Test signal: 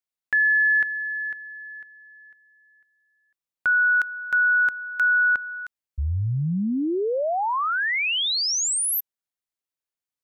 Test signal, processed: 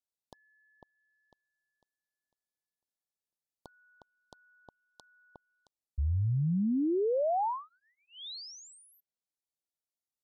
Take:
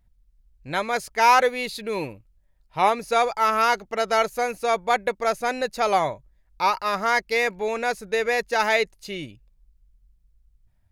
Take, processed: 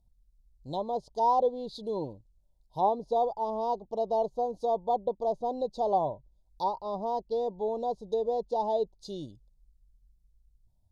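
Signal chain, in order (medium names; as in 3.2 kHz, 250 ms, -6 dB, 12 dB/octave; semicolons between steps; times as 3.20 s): low-pass that closes with the level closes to 1.8 kHz, closed at -21.5 dBFS; inverse Chebyshev band-stop 1.3–2.6 kHz, stop band 40 dB; trim -4.5 dB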